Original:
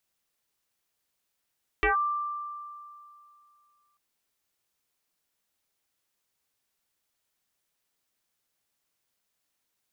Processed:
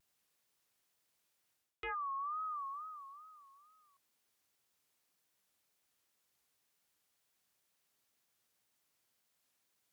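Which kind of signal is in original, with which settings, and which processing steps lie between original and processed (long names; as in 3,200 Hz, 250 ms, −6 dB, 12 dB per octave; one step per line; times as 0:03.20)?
two-operator FM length 2.14 s, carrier 1,180 Hz, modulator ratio 0.32, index 3.9, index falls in 0.13 s linear, decay 2.53 s, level −19.5 dB
high-pass filter 63 Hz
reversed playback
downward compressor 20 to 1, threshold −38 dBFS
reversed playback
tape wow and flutter 130 cents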